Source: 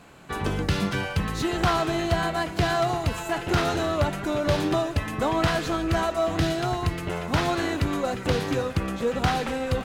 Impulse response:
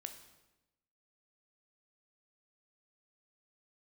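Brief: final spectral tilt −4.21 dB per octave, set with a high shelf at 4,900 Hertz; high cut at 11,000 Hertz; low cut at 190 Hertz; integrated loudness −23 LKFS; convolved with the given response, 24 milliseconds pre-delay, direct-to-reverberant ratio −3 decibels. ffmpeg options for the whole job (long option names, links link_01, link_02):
-filter_complex "[0:a]highpass=190,lowpass=11000,highshelf=frequency=4900:gain=5,asplit=2[link_01][link_02];[1:a]atrim=start_sample=2205,adelay=24[link_03];[link_02][link_03]afir=irnorm=-1:irlink=0,volume=7dB[link_04];[link_01][link_04]amix=inputs=2:normalize=0,volume=-1.5dB"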